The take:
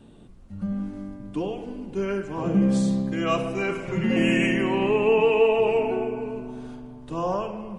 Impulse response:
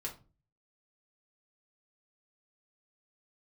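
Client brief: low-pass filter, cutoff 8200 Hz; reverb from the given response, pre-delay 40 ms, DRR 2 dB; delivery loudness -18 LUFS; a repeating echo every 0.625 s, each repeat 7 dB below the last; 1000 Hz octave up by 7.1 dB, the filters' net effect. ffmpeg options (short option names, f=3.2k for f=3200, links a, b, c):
-filter_complex "[0:a]lowpass=8.2k,equalizer=f=1k:t=o:g=8.5,aecho=1:1:625|1250|1875|2500|3125:0.447|0.201|0.0905|0.0407|0.0183,asplit=2[a][b];[1:a]atrim=start_sample=2205,adelay=40[c];[b][c]afir=irnorm=-1:irlink=0,volume=-2dB[d];[a][d]amix=inputs=2:normalize=0,volume=2dB"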